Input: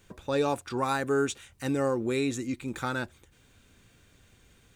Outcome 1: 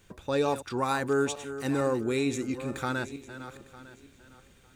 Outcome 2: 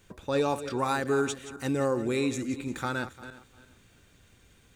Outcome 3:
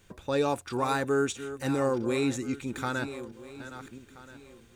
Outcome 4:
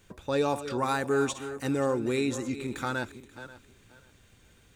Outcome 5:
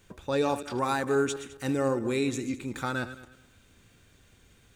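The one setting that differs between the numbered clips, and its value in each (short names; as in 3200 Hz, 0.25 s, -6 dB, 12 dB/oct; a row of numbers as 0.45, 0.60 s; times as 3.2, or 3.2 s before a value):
regenerating reverse delay, time: 0.452, 0.174, 0.664, 0.267, 0.105 s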